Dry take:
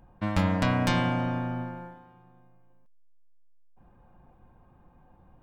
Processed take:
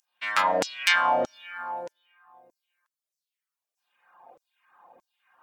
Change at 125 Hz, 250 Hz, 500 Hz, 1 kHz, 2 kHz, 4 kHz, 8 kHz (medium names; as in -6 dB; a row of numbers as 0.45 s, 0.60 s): -24.5 dB, -14.0 dB, +4.5 dB, +7.0 dB, +8.5 dB, +8.0 dB, +8.5 dB